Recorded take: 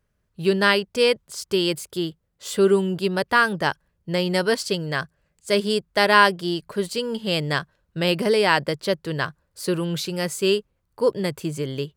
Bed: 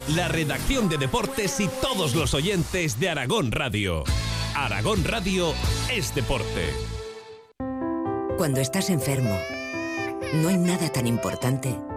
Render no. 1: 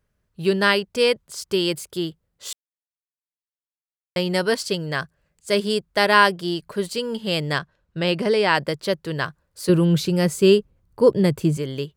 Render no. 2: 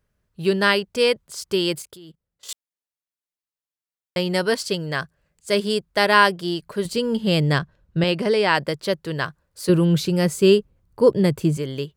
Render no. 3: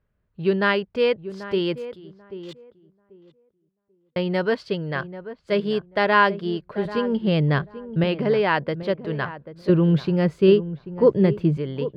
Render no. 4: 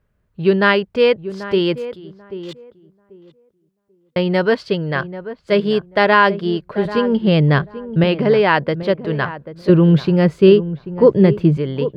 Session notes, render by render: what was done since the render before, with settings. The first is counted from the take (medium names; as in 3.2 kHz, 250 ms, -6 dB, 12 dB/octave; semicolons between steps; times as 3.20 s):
2.53–4.16 s: mute; 7.58–8.55 s: distance through air 51 m; 9.69–11.57 s: bass shelf 420 Hz +11 dB
1.82–2.49 s: level held to a coarse grid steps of 21 dB; 6.85–8.04 s: bass shelf 320 Hz +10 dB
distance through air 340 m; filtered feedback delay 788 ms, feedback 20%, low-pass 1.1 kHz, level -12.5 dB
trim +6.5 dB; peak limiter -1 dBFS, peak gain reduction 2.5 dB